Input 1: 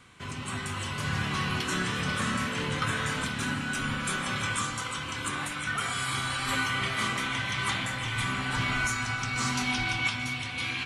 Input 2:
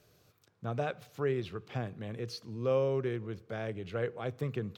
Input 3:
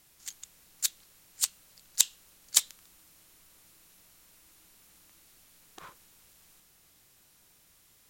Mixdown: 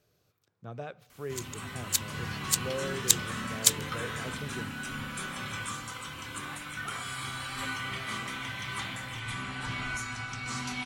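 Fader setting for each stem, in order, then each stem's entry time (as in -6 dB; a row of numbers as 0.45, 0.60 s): -6.5, -6.5, +1.0 dB; 1.10, 0.00, 1.10 s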